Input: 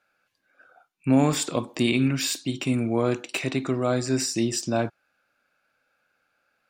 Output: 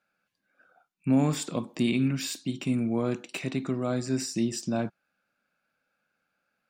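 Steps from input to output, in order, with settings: peaking EQ 190 Hz +10.5 dB 0.72 oct; trim -7 dB

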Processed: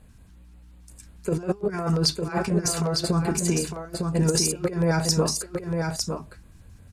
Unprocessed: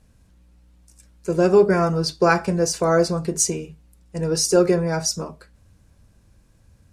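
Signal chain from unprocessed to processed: compressor with a negative ratio -23 dBFS, ratio -0.5; LFO notch square 5.6 Hz 540–5600 Hz; on a send: delay 905 ms -4.5 dB

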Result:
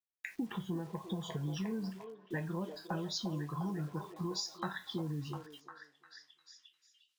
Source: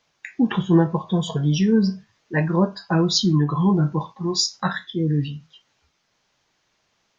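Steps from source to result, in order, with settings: compression 16:1, threshold -28 dBFS, peak gain reduction 18 dB; bit crusher 9-bit; on a send: repeats whose band climbs or falls 352 ms, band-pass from 520 Hz, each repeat 0.7 oct, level -3.5 dB; on the sum: trim -6.5 dB

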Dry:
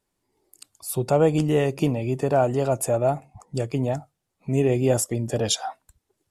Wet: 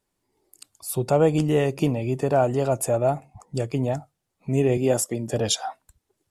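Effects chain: 4.77–5.32 s: high-pass 150 Hz

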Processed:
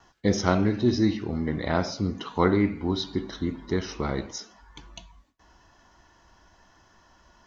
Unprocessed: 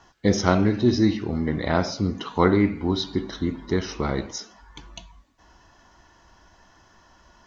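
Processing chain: gate with hold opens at -50 dBFS; trim -3 dB

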